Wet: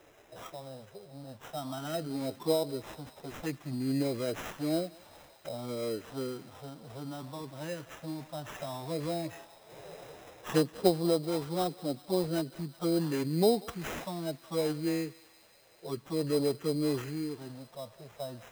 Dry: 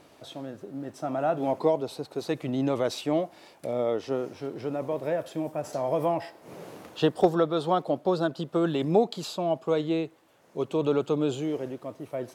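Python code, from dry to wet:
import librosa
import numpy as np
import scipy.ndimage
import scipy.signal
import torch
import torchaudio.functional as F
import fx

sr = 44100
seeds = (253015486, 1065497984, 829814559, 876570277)

y = fx.tracing_dist(x, sr, depth_ms=0.069)
y = scipy.signal.sosfilt(scipy.signal.butter(4, 41.0, 'highpass', fs=sr, output='sos'), y)
y = fx.dynamic_eq(y, sr, hz=1000.0, q=0.7, threshold_db=-38.0, ratio=4.0, max_db=-3)
y = fx.env_phaser(y, sr, low_hz=200.0, high_hz=1600.0, full_db=-20.5)
y = fx.stretch_vocoder(y, sr, factor=1.5)
y = fx.high_shelf(y, sr, hz=4500.0, db=8.5)
y = fx.sample_hold(y, sr, seeds[0], rate_hz=4500.0, jitter_pct=0)
y = fx.echo_thinned(y, sr, ms=190, feedback_pct=80, hz=1000.0, wet_db=-18)
y = y * 10.0 ** (-2.0 / 20.0)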